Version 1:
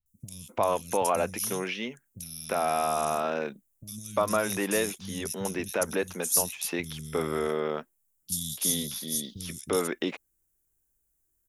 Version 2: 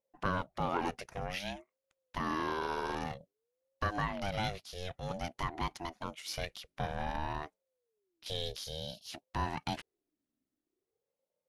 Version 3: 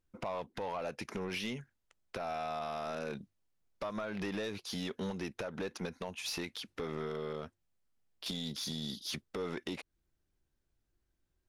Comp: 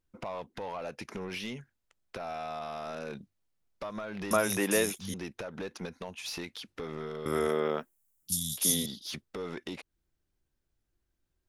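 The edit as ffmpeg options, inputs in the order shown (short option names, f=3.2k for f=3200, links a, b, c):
-filter_complex "[0:a]asplit=2[a][b];[2:a]asplit=3[c][d][e];[c]atrim=end=4.312[f];[a]atrim=start=4.308:end=5.142[g];[d]atrim=start=5.138:end=7.262[h];[b]atrim=start=7.258:end=8.862[i];[e]atrim=start=8.858[j];[f][g]acrossfade=d=0.004:c1=hsin:c2=hsin[k];[k][h]acrossfade=d=0.004:c1=hsin:c2=hsin[l];[l][i]acrossfade=d=0.004:c1=hsin:c2=hsin[m];[m][j]acrossfade=d=0.004:c1=hsin:c2=hsin"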